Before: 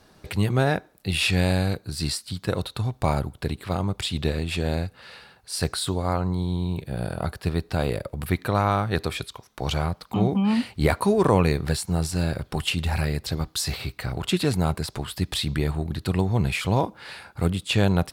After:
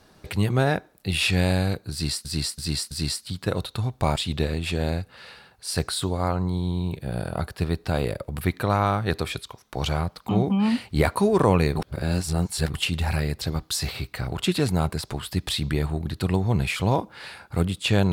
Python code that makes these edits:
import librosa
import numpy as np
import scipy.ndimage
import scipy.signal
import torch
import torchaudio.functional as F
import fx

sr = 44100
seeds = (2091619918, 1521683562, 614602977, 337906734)

y = fx.edit(x, sr, fx.repeat(start_s=1.92, length_s=0.33, count=4),
    fx.cut(start_s=3.17, length_s=0.84),
    fx.reverse_span(start_s=11.61, length_s=0.98), tone=tone)